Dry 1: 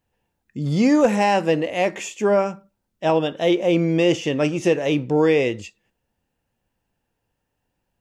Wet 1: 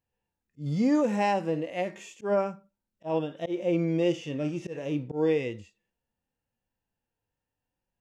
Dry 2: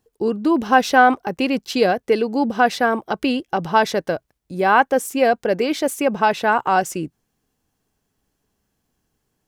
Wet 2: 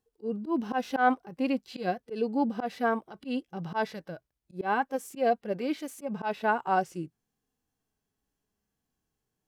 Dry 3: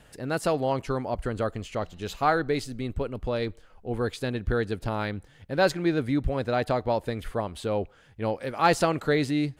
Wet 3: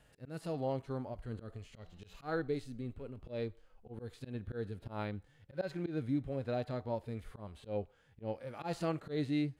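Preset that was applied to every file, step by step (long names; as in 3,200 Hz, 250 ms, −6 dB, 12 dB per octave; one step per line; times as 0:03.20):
harmonic and percussive parts rebalanced percussive −17 dB
volume swells 118 ms
level −7 dB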